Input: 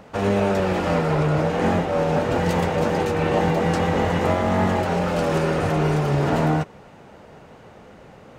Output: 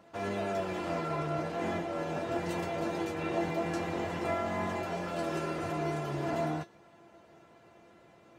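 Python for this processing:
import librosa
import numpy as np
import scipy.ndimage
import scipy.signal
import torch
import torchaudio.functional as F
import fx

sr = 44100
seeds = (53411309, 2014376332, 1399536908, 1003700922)

y = scipy.signal.sosfilt(scipy.signal.butter(2, 84.0, 'highpass', fs=sr, output='sos'), x)
y = fx.comb_fb(y, sr, f0_hz=340.0, decay_s=0.16, harmonics='all', damping=0.0, mix_pct=90)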